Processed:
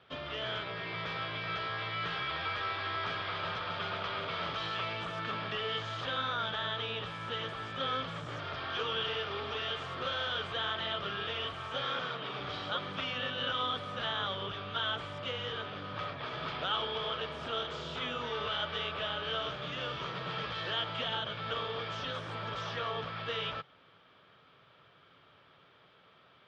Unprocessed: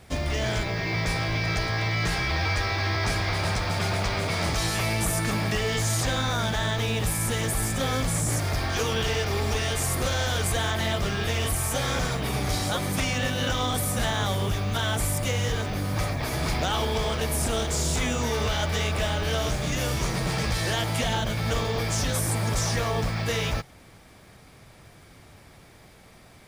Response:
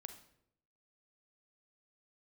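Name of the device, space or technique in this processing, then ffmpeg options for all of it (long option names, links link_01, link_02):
kitchen radio: -filter_complex "[0:a]highpass=200,equalizer=frequency=220:width_type=q:width=4:gain=-9,equalizer=frequency=320:width_type=q:width=4:gain=-7,equalizer=frequency=760:width_type=q:width=4:gain=-6,equalizer=frequency=1300:width_type=q:width=4:gain=8,equalizer=frequency=2100:width_type=q:width=4:gain=-6,equalizer=frequency=3200:width_type=q:width=4:gain=9,lowpass=frequency=3500:width=0.5412,lowpass=frequency=3500:width=1.3066,asettb=1/sr,asplit=3[link_01][link_02][link_03];[link_01]atrim=end=11.844[link_04];[link_02]atrim=start=11.84:end=12.4,asetpts=PTS-STARTPTS,afade=type=in:duration=0.004:curve=qsin,afade=type=out:start_time=0.556:duration=0.004:curve=qsin,equalizer=frequency=65:width=1.4:gain=-14.5[link_05];[link_03]atrim=start=12.396[link_06];[link_04][link_05]acrossfade=duration=0.004:curve1=hsin:curve2=qsin[link_07];[link_07][link_06]acrossfade=duration=0.004:curve1=qsin:curve2=hsin,volume=-7.5dB"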